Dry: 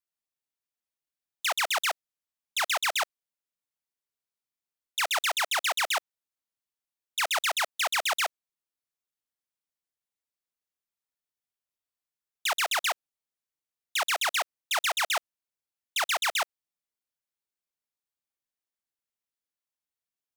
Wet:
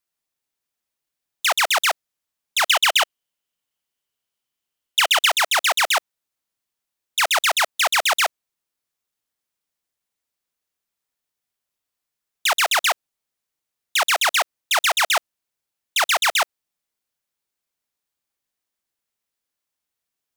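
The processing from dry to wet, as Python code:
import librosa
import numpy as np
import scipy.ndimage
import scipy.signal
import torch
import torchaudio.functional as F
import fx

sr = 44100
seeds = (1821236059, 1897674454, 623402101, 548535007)

y = fx.peak_eq(x, sr, hz=3000.0, db=9.5, octaves=0.21, at=(2.66, 5.3))
y = y * 10.0 ** (8.5 / 20.0)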